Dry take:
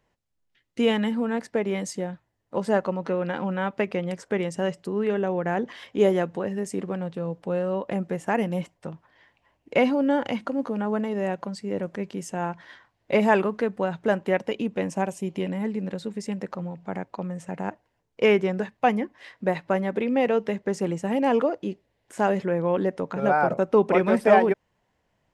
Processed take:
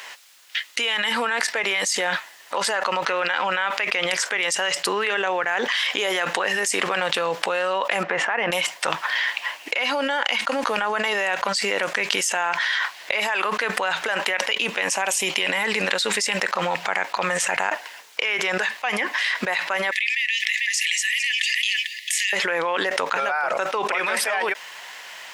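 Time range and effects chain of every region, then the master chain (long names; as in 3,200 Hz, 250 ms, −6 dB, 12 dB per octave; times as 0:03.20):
0:08.03–0:08.52: low-pass filter 1,800 Hz + downward compressor 3 to 1, threshold −30 dBFS
0:19.91–0:22.33: linear-phase brick-wall high-pass 1,700 Hz + single-tap delay 446 ms −20 dB
whole clip: high-pass filter 1,400 Hz 12 dB per octave; parametric band 3,400 Hz +3 dB 1.9 octaves; envelope flattener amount 100%; level −1 dB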